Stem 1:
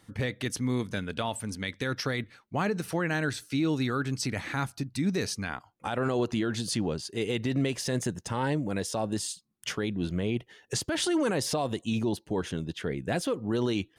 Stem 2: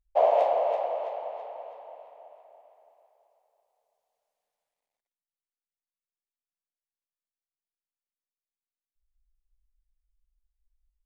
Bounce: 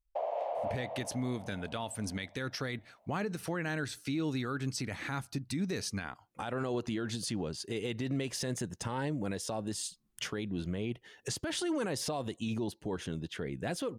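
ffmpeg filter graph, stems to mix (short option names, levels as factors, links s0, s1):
-filter_complex "[0:a]adelay=550,volume=1.19[s0];[1:a]volume=0.531[s1];[s0][s1]amix=inputs=2:normalize=0,alimiter=level_in=1.26:limit=0.0631:level=0:latency=1:release=345,volume=0.794"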